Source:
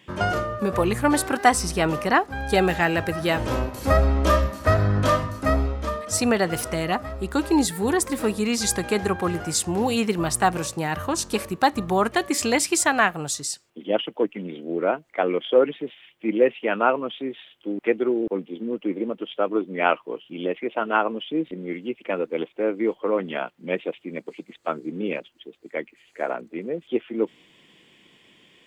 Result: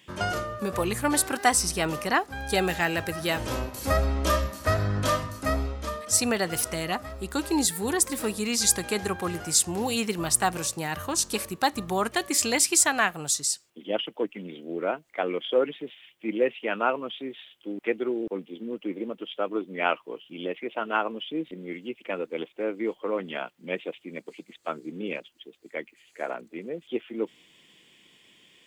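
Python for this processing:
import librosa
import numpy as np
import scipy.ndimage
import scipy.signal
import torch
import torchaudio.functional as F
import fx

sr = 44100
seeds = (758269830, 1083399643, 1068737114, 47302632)

y = fx.high_shelf(x, sr, hz=3200.0, db=10.5)
y = y * 10.0 ** (-6.0 / 20.0)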